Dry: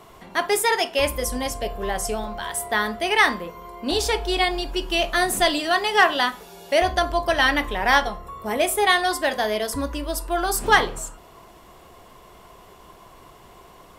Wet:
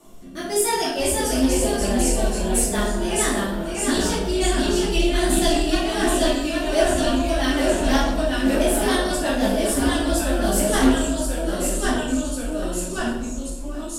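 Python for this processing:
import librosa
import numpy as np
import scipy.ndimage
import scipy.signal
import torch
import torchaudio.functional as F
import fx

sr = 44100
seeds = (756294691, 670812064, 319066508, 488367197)

p1 = fx.rotary_switch(x, sr, hz=1.0, then_hz=6.0, switch_at_s=1.88)
p2 = fx.rider(p1, sr, range_db=4, speed_s=0.5)
p3 = p1 + (p2 * 10.0 ** (-2.5 / 20.0))
p4 = fx.echo_pitch(p3, sr, ms=460, semitones=-1, count=3, db_per_echo=-3.0)
p5 = fx.graphic_eq_10(p4, sr, hz=(125, 250, 500, 1000, 2000, 4000, 8000), db=(-9, 3, -5, -6, -12, -5, 6))
p6 = p5 + fx.echo_single(p5, sr, ms=758, db=-17.5, dry=0)
p7 = fx.room_shoebox(p6, sr, seeds[0], volume_m3=250.0, walls='mixed', distance_m=2.5)
p8 = fx.doppler_dist(p7, sr, depth_ms=0.15)
y = p8 * 10.0 ** (-7.0 / 20.0)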